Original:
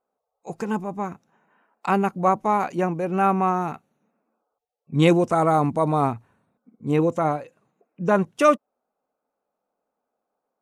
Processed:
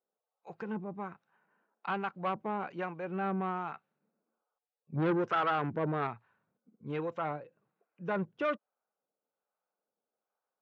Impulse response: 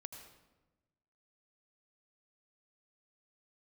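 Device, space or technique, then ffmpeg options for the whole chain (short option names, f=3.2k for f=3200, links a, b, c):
guitar amplifier with harmonic tremolo: -filter_complex "[0:a]asettb=1/sr,asplit=3[a][b][c];[a]atrim=end=4.974[d];[b]atrim=start=4.97:end=6.07,asetpts=PTS-STARTPTS,afade=t=in:d=0.004:c=qsin,afade=t=out:st=1.096:d=0.004:c=qsin,equalizer=f=100:t=o:w=0.67:g=4,equalizer=f=400:t=o:w=0.67:g=6,equalizer=f=1.6k:t=o:w=0.67:g=10,equalizer=f=6.3k:t=o:w=0.67:g=6[e];[c]atrim=start=6.066[f];[d][e]acrossfade=d=0.004:c1=hsin:c2=qsin[g];[g][f]acrossfade=d=0.004:c1=qsin:c2=hsin,acrossover=split=630[h][i];[h]aeval=exprs='val(0)*(1-0.7/2+0.7/2*cos(2*PI*1.2*n/s))':c=same[j];[i]aeval=exprs='val(0)*(1-0.7/2-0.7/2*cos(2*PI*1.2*n/s))':c=same[k];[j][k]amix=inputs=2:normalize=0,asoftclip=type=tanh:threshold=-18dB,highpass=110,equalizer=f=260:t=q:w=4:g=-7,equalizer=f=700:t=q:w=4:g=-3,equalizer=f=1.5k:t=q:w=4:g=5,lowpass=f=3.8k:w=0.5412,lowpass=f=3.8k:w=1.3066,volume=-6.5dB"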